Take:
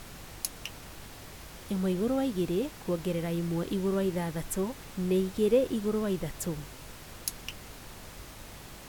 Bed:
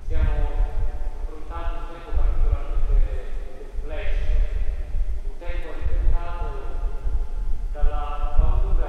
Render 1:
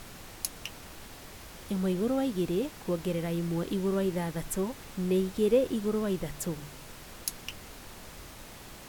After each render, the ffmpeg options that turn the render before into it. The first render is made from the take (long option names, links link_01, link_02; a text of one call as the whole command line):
ffmpeg -i in.wav -af "bandreject=frequency=50:width_type=h:width=4,bandreject=frequency=100:width_type=h:width=4,bandreject=frequency=150:width_type=h:width=4" out.wav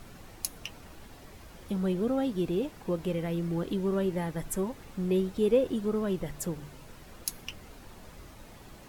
ffmpeg -i in.wav -af "afftdn=noise_reduction=8:noise_floor=-48" out.wav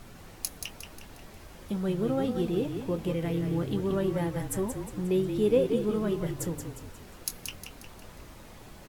ffmpeg -i in.wav -filter_complex "[0:a]asplit=2[link_01][link_02];[link_02]adelay=24,volume=-14dB[link_03];[link_01][link_03]amix=inputs=2:normalize=0,asplit=7[link_04][link_05][link_06][link_07][link_08][link_09][link_10];[link_05]adelay=179,afreqshift=-35,volume=-7dB[link_11];[link_06]adelay=358,afreqshift=-70,volume=-13.6dB[link_12];[link_07]adelay=537,afreqshift=-105,volume=-20.1dB[link_13];[link_08]adelay=716,afreqshift=-140,volume=-26.7dB[link_14];[link_09]adelay=895,afreqshift=-175,volume=-33.2dB[link_15];[link_10]adelay=1074,afreqshift=-210,volume=-39.8dB[link_16];[link_04][link_11][link_12][link_13][link_14][link_15][link_16]amix=inputs=7:normalize=0" out.wav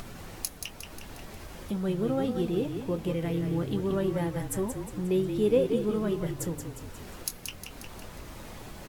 ffmpeg -i in.wav -af "acompressor=mode=upward:threshold=-35dB:ratio=2.5" out.wav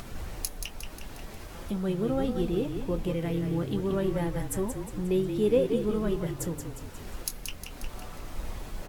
ffmpeg -i in.wav -i bed.wav -filter_complex "[1:a]volume=-19dB[link_01];[0:a][link_01]amix=inputs=2:normalize=0" out.wav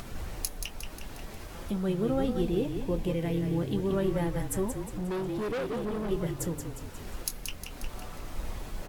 ffmpeg -i in.wav -filter_complex "[0:a]asettb=1/sr,asplit=3[link_01][link_02][link_03];[link_01]atrim=end=2.424[link_04];[link_02]atrim=start=2.42:end=3.92,asetpts=PTS-STARTPTS,afade=type=in:duration=0.004:curve=qsin,afade=type=out:start_time=1.496:duration=0.004:curve=qsin,equalizer=frequency=1300:width_type=o:width=0.23:gain=-7.5[link_05];[link_03]atrim=start=3.916[link_06];[link_04][link_05]acrossfade=duration=0.004:curve1=hsin:curve2=qsin[link_07];[link_07][link_06]acrossfade=duration=0.004:curve1=qsin:curve2=hsin,asettb=1/sr,asplit=3[link_08][link_09][link_10];[link_08]atrim=end=4.824[link_11];[link_09]atrim=start=4.82:end=6.11,asetpts=PTS-STARTPTS,afade=type=in:duration=0.004:curve=qsin,afade=type=out:start_time=1.286:duration=0.004:curve=qsin,asoftclip=type=hard:threshold=-30dB[link_12];[link_10]atrim=start=6.106[link_13];[link_11][link_12]acrossfade=duration=0.004:curve1=hsin:curve2=qsin[link_14];[link_14][link_13]acrossfade=duration=0.004:curve1=qsin:curve2=hsin" out.wav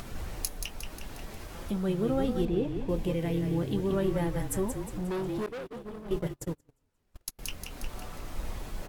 ffmpeg -i in.wav -filter_complex "[0:a]asettb=1/sr,asplit=3[link_01][link_02][link_03];[link_01]atrim=end=2.454[link_04];[link_02]atrim=start=2.45:end=2.89,asetpts=PTS-STARTPTS,afade=type=in:duration=0.004:curve=qsin,afade=type=out:start_time=0.436:duration=0.004:curve=qsin,lowpass=frequency=2600:poles=1[link_05];[link_03]atrim=start=2.886[link_06];[link_04][link_05]acrossfade=duration=0.004:curve1=hsin:curve2=qsin[link_07];[link_07][link_06]acrossfade=duration=0.004:curve1=qsin:curve2=hsin,asettb=1/sr,asplit=3[link_08][link_09][link_10];[link_08]atrim=end=5.464[link_11];[link_09]atrim=start=5.46:end=7.39,asetpts=PTS-STARTPTS,afade=type=in:duration=0.004:curve=qsin,afade=type=out:start_time=1.926:duration=0.004:curve=qsin,agate=range=-35dB:threshold=-32dB:ratio=16:release=100:detection=peak[link_12];[link_10]atrim=start=7.386[link_13];[link_11][link_12]acrossfade=duration=0.004:curve1=hsin:curve2=qsin[link_14];[link_14][link_13]acrossfade=duration=0.004:curve1=qsin:curve2=hsin" out.wav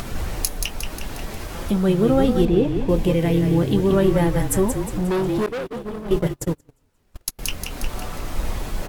ffmpeg -i in.wav -af "volume=11dB,alimiter=limit=-3dB:level=0:latency=1" out.wav